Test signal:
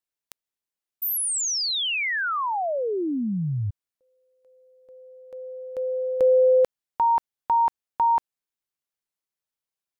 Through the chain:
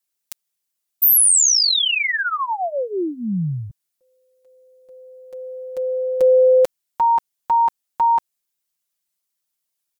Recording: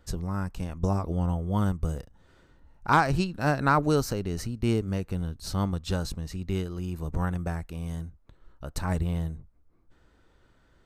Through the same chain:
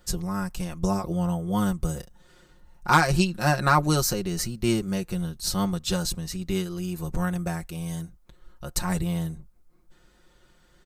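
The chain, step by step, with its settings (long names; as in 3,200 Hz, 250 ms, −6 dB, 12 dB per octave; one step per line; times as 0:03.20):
high-shelf EQ 3,700 Hz +11.5 dB
comb filter 5.6 ms, depth 78%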